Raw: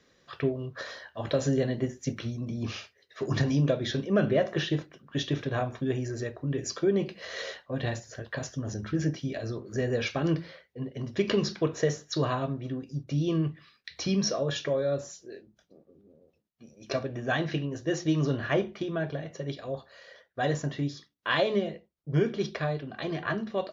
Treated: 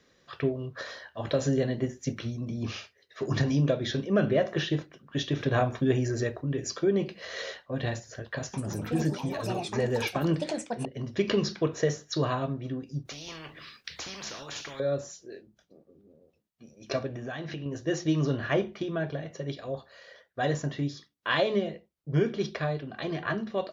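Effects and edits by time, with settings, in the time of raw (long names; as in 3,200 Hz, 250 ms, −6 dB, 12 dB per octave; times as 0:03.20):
0:05.40–0:06.41: clip gain +4.5 dB
0:08.37–0:11.84: delay with pitch and tempo change per echo 166 ms, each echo +7 semitones, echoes 2, each echo −6 dB
0:13.05–0:14.80: every bin compressed towards the loudest bin 4 to 1
0:17.07–0:17.66: downward compressor, threshold −33 dBFS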